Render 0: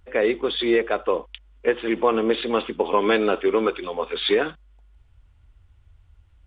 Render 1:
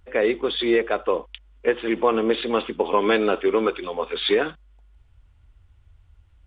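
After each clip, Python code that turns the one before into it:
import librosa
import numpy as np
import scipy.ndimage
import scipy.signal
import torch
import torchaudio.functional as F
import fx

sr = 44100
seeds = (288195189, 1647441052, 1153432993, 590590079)

y = x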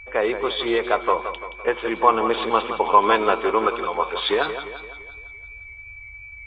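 y = fx.graphic_eq_10(x, sr, hz=(125, 250, 500, 1000, 2000, 4000), db=(-4, -11, -5, 7, -7, -4))
y = y + 10.0 ** (-44.0 / 20.0) * np.sin(2.0 * np.pi * 2300.0 * np.arange(len(y)) / sr)
y = fx.echo_warbled(y, sr, ms=170, feedback_pct=50, rate_hz=2.8, cents=91, wet_db=-10)
y = y * librosa.db_to_amplitude(5.0)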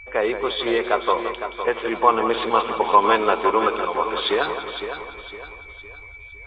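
y = fx.echo_feedback(x, sr, ms=509, feedback_pct=38, wet_db=-9.5)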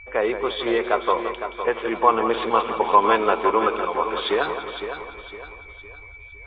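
y = fx.air_absorb(x, sr, metres=150.0)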